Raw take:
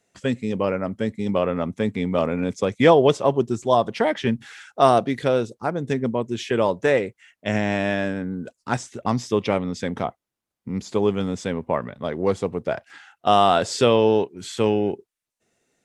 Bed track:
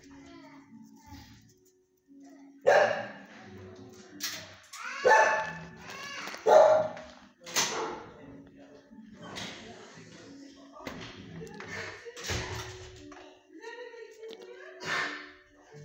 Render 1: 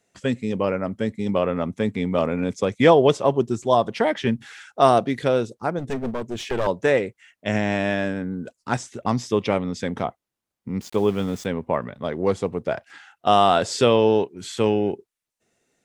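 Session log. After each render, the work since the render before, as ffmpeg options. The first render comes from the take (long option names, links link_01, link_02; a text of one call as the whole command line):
ffmpeg -i in.wav -filter_complex "[0:a]asettb=1/sr,asplit=3[link_01][link_02][link_03];[link_01]atrim=end=5.794[link_04];[link_02]atrim=start=5.79:end=6.67,asetpts=PTS-STARTPTS,afade=type=in:duration=0.004:curve=qsin,afade=type=out:start_time=0.876:duration=0.004:curve=qsin,aeval=exprs='clip(val(0),-1,0.0316)':channel_layout=same[link_05];[link_03]atrim=start=6.666[link_06];[link_04][link_05]acrossfade=duration=0.004:curve1=hsin:curve2=qsin[link_07];[link_07][link_06]acrossfade=duration=0.004:curve1=qsin:curve2=hsin,asettb=1/sr,asplit=3[link_08][link_09][link_10];[link_08]atrim=end=10.814[link_11];[link_09]atrim=start=10.81:end=11.46,asetpts=PTS-STARTPTS,afade=type=in:duration=0.004:curve=qsin,afade=type=out:start_time=0.646:duration=0.004:curve=qsin,aeval=exprs='val(0)*gte(abs(val(0)),0.0119)':channel_layout=same[link_12];[link_10]atrim=start=11.456[link_13];[link_11][link_12]acrossfade=duration=0.004:curve1=hsin:curve2=qsin[link_14];[link_14][link_13]acrossfade=duration=0.004:curve1=qsin:curve2=hsin" out.wav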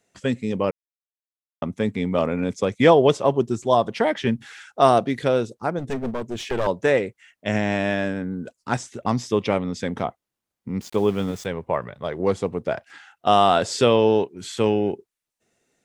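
ffmpeg -i in.wav -filter_complex "[0:a]asettb=1/sr,asplit=3[link_01][link_02][link_03];[link_01]atrim=end=11.314[link_04];[link_02]atrim=start=11.31:end=12.2,asetpts=PTS-STARTPTS,afade=type=in:duration=0.004:curve=qsin,afade=type=out:start_time=0.886:duration=0.004:curve=qsin,equalizer=frequency=240:width_type=o:width=0.51:gain=-10.5[link_05];[link_03]atrim=start=12.196[link_06];[link_04][link_05]acrossfade=duration=0.004:curve1=hsin:curve2=qsin[link_07];[link_07][link_06]acrossfade=duration=0.004:curve1=qsin:curve2=hsin,asplit=3[link_08][link_09][link_10];[link_08]atrim=end=0.71,asetpts=PTS-STARTPTS,afade=type=out:start_time=0.706:duration=0.004:curve=hsin[link_11];[link_09]atrim=start=0.71:end=1.62,asetpts=PTS-STARTPTS,volume=0[link_12];[link_10]atrim=start=1.62,asetpts=PTS-STARTPTS,afade=type=in:duration=0.004:curve=hsin[link_13];[link_11][link_12][link_13]concat=n=3:v=0:a=1" out.wav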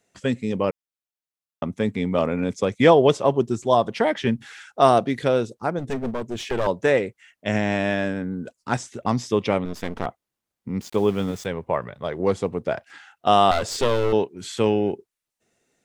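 ffmpeg -i in.wav -filter_complex "[0:a]asettb=1/sr,asplit=3[link_01][link_02][link_03];[link_01]atrim=end=9.654[link_04];[link_02]atrim=start=9.65:end=10.06,asetpts=PTS-STARTPTS,afade=type=in:duration=0.004:curve=qsin,afade=type=out:start_time=0.406:duration=0.004:curve=qsin,aeval=exprs='max(val(0),0)':channel_layout=same[link_05];[link_03]atrim=start=10.056[link_06];[link_04][link_05]acrossfade=duration=0.004:curve1=hsin:curve2=qsin[link_07];[link_07][link_06]acrossfade=duration=0.004:curve1=qsin:curve2=hsin,asettb=1/sr,asplit=3[link_08][link_09][link_10];[link_08]atrim=end=13.514[link_11];[link_09]atrim=start=13.51:end=14.13,asetpts=PTS-STARTPTS,afade=type=in:duration=0.004:curve=qsin,afade=type=out:start_time=0.616:duration=0.004:curve=qsin,aeval=exprs='clip(val(0),-1,0.0398)':channel_layout=same[link_12];[link_10]atrim=start=14.126[link_13];[link_11][link_12]acrossfade=duration=0.004:curve1=hsin:curve2=qsin[link_14];[link_14][link_13]acrossfade=duration=0.004:curve1=qsin:curve2=hsin" out.wav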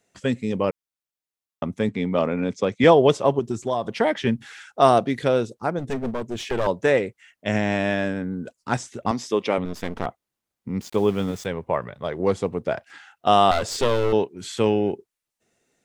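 ffmpeg -i in.wav -filter_complex "[0:a]asettb=1/sr,asplit=3[link_01][link_02][link_03];[link_01]atrim=end=1.894[link_04];[link_02]atrim=start=1.89:end=2.84,asetpts=PTS-STARTPTS,afade=type=in:duration=0.004:curve=qsin,afade=type=out:start_time=0.946:duration=0.004:curve=qsin,highpass=110,lowpass=6000[link_05];[link_03]atrim=start=2.836[link_06];[link_04][link_05]acrossfade=duration=0.004:curve1=hsin:curve2=qsin[link_07];[link_07][link_06]acrossfade=duration=0.004:curve1=qsin:curve2=hsin,asettb=1/sr,asplit=3[link_08][link_09][link_10];[link_08]atrim=end=3.394[link_11];[link_09]atrim=start=3.39:end=3.87,asetpts=PTS-STARTPTS,afade=type=in:duration=0.004:curve=qsin,afade=type=out:start_time=0.476:duration=0.004:curve=qsin,acompressor=threshold=-20dB:ratio=4:attack=3.2:release=140:knee=1:detection=peak[link_12];[link_10]atrim=start=3.866[link_13];[link_11][link_12]acrossfade=duration=0.004:curve1=hsin:curve2=qsin[link_14];[link_14][link_13]acrossfade=duration=0.004:curve1=qsin:curve2=hsin,asettb=1/sr,asplit=3[link_15][link_16][link_17];[link_15]atrim=end=9.114[link_18];[link_16]atrim=start=9.11:end=9.58,asetpts=PTS-STARTPTS,afade=type=in:duration=0.004:curve=qsin,afade=type=out:start_time=0.466:duration=0.004:curve=qsin,highpass=250[link_19];[link_17]atrim=start=9.576[link_20];[link_18][link_19]acrossfade=duration=0.004:curve1=hsin:curve2=qsin[link_21];[link_21][link_20]acrossfade=duration=0.004:curve1=qsin:curve2=hsin" out.wav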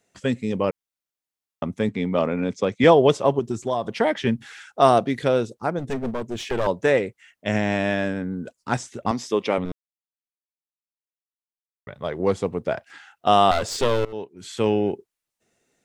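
ffmpeg -i in.wav -filter_complex "[0:a]asplit=4[link_01][link_02][link_03][link_04];[link_01]atrim=end=9.72,asetpts=PTS-STARTPTS,afade=type=out:start_time=9.716:duration=0.004:curve=hsin[link_05];[link_02]atrim=start=9.72:end=11.87,asetpts=PTS-STARTPTS,volume=0[link_06];[link_03]atrim=start=11.87:end=14.05,asetpts=PTS-STARTPTS,afade=type=in:duration=0.004:curve=hsin,afade=type=out:start_time=2.176:duration=0.004:curve=hsin:silence=0.0891251[link_07];[link_04]atrim=start=14.05,asetpts=PTS-STARTPTS,afade=type=in:duration=0.69:silence=0.0891251[link_08];[link_05][link_06][link_07][link_08]concat=n=4:v=0:a=1" out.wav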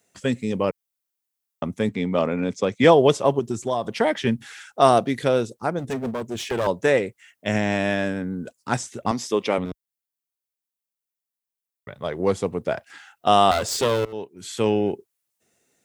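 ffmpeg -i in.wav -af "highpass=53,highshelf=frequency=8500:gain=11" out.wav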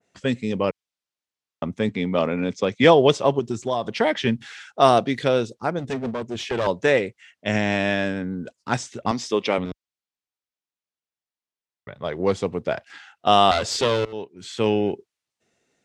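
ffmpeg -i in.wav -af "lowpass=5100,adynamicequalizer=threshold=0.02:dfrequency=2100:dqfactor=0.7:tfrequency=2100:tqfactor=0.7:attack=5:release=100:ratio=0.375:range=2.5:mode=boostabove:tftype=highshelf" out.wav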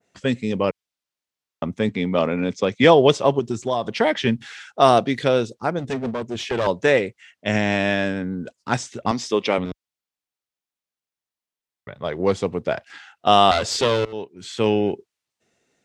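ffmpeg -i in.wav -af "volume=1.5dB,alimiter=limit=-1dB:level=0:latency=1" out.wav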